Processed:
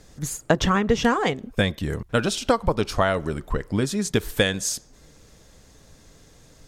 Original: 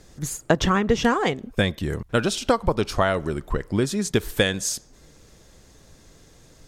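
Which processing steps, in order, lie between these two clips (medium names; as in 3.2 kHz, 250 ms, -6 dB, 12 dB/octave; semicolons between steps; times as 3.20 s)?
band-stop 360 Hz, Q 12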